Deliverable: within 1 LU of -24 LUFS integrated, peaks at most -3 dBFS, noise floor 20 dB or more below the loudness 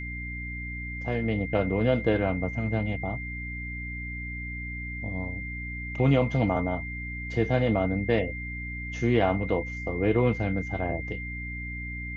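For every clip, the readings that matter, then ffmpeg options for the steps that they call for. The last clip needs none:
hum 60 Hz; highest harmonic 300 Hz; hum level -34 dBFS; steady tone 2.1 kHz; tone level -36 dBFS; loudness -28.5 LUFS; peak level -9.5 dBFS; loudness target -24.0 LUFS
-> -af "bandreject=f=60:t=h:w=6,bandreject=f=120:t=h:w=6,bandreject=f=180:t=h:w=6,bandreject=f=240:t=h:w=6,bandreject=f=300:t=h:w=6"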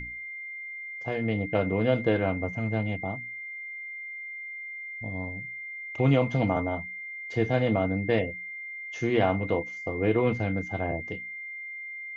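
hum not found; steady tone 2.1 kHz; tone level -36 dBFS
-> -af "bandreject=f=2100:w=30"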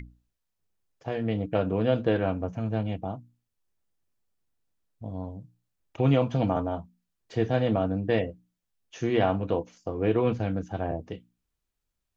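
steady tone not found; loudness -28.0 LUFS; peak level -10.0 dBFS; loudness target -24.0 LUFS
-> -af "volume=1.58"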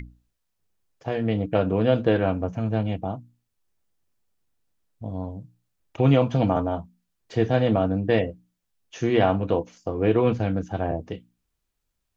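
loudness -24.0 LUFS; peak level -6.0 dBFS; noise floor -78 dBFS

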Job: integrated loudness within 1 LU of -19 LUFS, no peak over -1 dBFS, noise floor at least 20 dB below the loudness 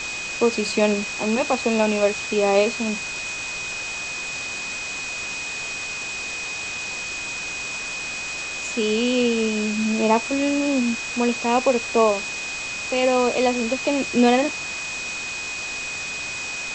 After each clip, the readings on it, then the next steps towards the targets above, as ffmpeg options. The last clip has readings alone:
steady tone 2.5 kHz; tone level -29 dBFS; noise floor -30 dBFS; noise floor target -43 dBFS; loudness -23.0 LUFS; peak level -4.5 dBFS; loudness target -19.0 LUFS
-> -af "bandreject=f=2500:w=30"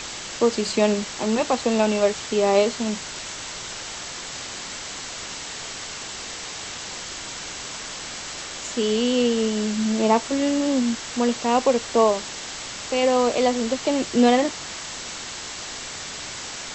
steady tone not found; noise floor -35 dBFS; noise floor target -44 dBFS
-> -af "afftdn=nr=9:nf=-35"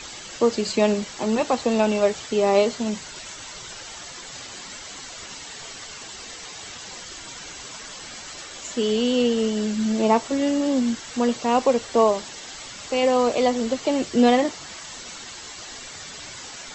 noise floor -39 dBFS; noise floor target -42 dBFS
-> -af "afftdn=nr=6:nf=-39"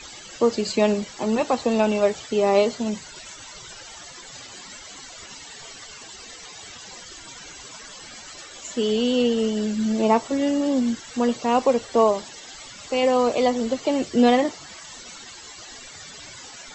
noise floor -42 dBFS; loudness -22.0 LUFS; peak level -5.0 dBFS; loudness target -19.0 LUFS
-> -af "volume=1.41"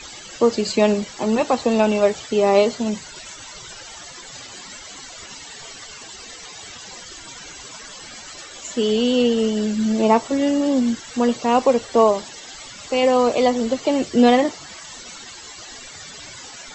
loudness -19.0 LUFS; peak level -2.0 dBFS; noise floor -39 dBFS

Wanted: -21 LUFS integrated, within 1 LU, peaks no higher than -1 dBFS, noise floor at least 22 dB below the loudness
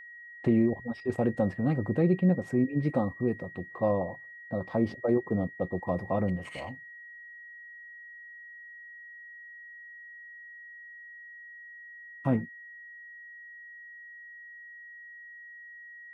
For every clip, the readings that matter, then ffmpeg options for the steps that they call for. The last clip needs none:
steady tone 1.9 kHz; tone level -45 dBFS; loudness -29.5 LUFS; peak level -13.5 dBFS; loudness target -21.0 LUFS
-> -af "bandreject=f=1900:w=30"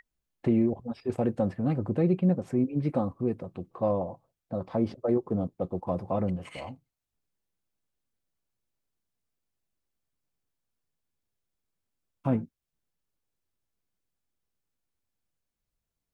steady tone not found; loudness -29.5 LUFS; peak level -13.5 dBFS; loudness target -21.0 LUFS
-> -af "volume=2.66"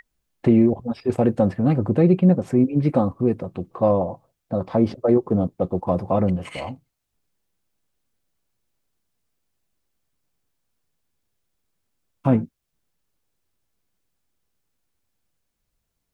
loudness -21.0 LUFS; peak level -5.0 dBFS; noise floor -78 dBFS

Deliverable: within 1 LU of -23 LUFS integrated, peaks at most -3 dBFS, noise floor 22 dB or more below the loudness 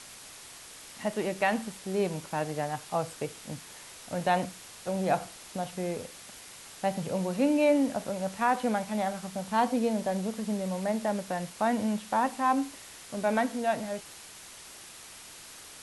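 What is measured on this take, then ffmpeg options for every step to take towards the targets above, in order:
noise floor -48 dBFS; noise floor target -53 dBFS; loudness -30.5 LUFS; peak level -13.0 dBFS; loudness target -23.0 LUFS
-> -af "afftdn=nr=6:nf=-48"
-af "volume=2.37"

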